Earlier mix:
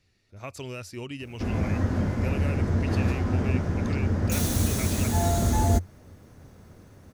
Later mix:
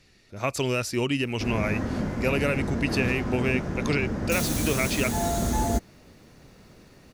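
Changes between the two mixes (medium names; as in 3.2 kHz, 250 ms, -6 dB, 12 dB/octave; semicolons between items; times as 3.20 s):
speech +11.5 dB; master: add peaking EQ 89 Hz -13 dB 0.46 oct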